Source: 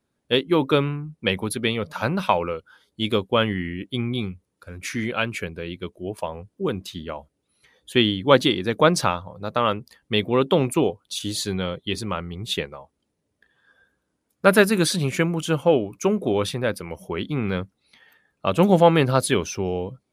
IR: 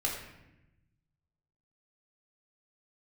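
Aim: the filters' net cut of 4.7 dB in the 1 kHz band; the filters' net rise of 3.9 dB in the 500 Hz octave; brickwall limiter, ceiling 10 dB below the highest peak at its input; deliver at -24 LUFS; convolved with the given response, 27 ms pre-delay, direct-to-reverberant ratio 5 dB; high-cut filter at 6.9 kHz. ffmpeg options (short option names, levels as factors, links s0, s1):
-filter_complex "[0:a]lowpass=6900,equalizer=f=500:t=o:g=6.5,equalizer=f=1000:t=o:g=-8.5,alimiter=limit=0.316:level=0:latency=1,asplit=2[s0][s1];[1:a]atrim=start_sample=2205,adelay=27[s2];[s1][s2]afir=irnorm=-1:irlink=0,volume=0.299[s3];[s0][s3]amix=inputs=2:normalize=0,volume=0.891"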